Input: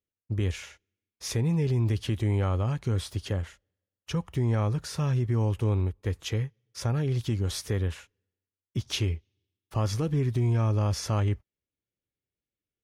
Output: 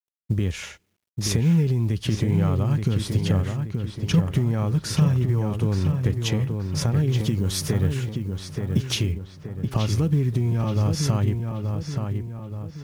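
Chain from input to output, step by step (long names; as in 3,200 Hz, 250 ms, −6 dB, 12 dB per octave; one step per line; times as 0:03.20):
downward compressor 16 to 1, threshold −31 dBFS, peak gain reduction 10 dB
parametric band 180 Hz +8 dB 0.95 octaves
feedback echo with a low-pass in the loop 877 ms, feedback 49%, low-pass 2,800 Hz, level −5 dB
log-companded quantiser 8 bits
0:07.12–0:09.12: high-shelf EQ 9,200 Hz +5 dB
level +8.5 dB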